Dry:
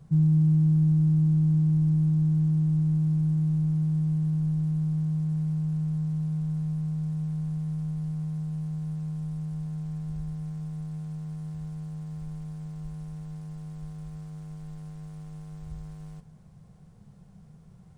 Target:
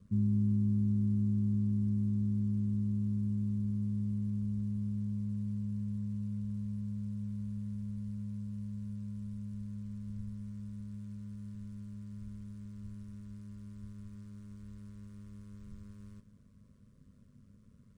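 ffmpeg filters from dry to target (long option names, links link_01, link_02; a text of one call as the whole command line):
ffmpeg -i in.wav -af "asuperstop=centerf=790:order=12:qfactor=1.9,aeval=exprs='val(0)*sin(2*PI*50*n/s)':channel_layout=same,volume=-5.5dB" out.wav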